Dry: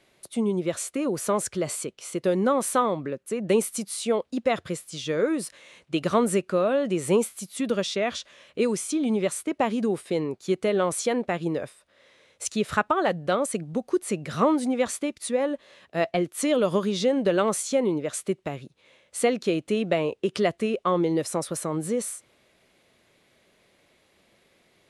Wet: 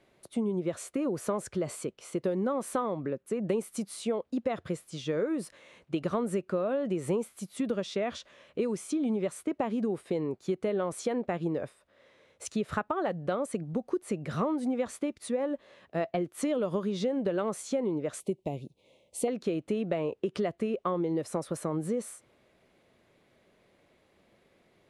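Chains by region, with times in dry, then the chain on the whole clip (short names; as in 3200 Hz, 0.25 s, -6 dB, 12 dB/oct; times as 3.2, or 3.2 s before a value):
18.2–19.28 Butterworth band-stop 1500 Hz, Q 0.88 + high shelf 11000 Hz +11 dB
whole clip: high shelf 2000 Hz -10.5 dB; compressor 4:1, threshold -27 dBFS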